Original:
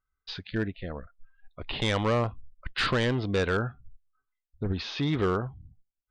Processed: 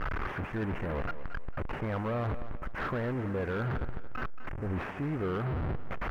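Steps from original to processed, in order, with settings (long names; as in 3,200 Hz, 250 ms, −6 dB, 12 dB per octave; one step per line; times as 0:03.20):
linear delta modulator 16 kbit/s, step −31.5 dBFS
low-pass filter 1,900 Hz 24 dB per octave
reversed playback
downward compressor, threshold −35 dBFS, peak gain reduction 11.5 dB
reversed playback
leveller curve on the samples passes 2
feedback echo with a high-pass in the loop 226 ms, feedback 35%, high-pass 150 Hz, level −12 dB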